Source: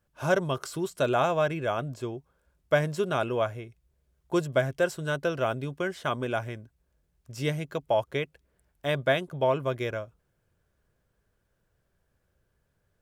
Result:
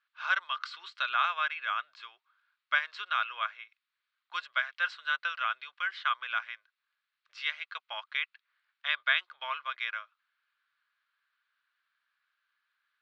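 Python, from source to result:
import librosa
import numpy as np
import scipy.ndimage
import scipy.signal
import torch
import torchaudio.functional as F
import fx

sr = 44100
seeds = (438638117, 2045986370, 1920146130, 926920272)

y = scipy.signal.sosfilt(scipy.signal.ellip(3, 1.0, 70, [1200.0, 4200.0], 'bandpass', fs=sr, output='sos'), x)
y = F.gain(torch.from_numpy(y), 4.5).numpy()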